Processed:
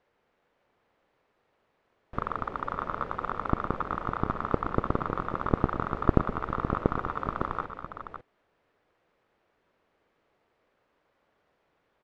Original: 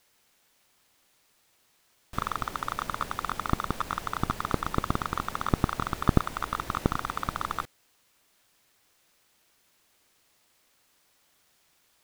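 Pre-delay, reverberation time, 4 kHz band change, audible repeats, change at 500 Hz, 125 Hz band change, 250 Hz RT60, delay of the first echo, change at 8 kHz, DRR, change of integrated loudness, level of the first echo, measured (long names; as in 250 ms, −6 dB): no reverb audible, no reverb audible, −13.0 dB, 4, +5.0 dB, 0.0 dB, no reverb audible, 119 ms, below −25 dB, no reverb audible, 0.0 dB, −13.0 dB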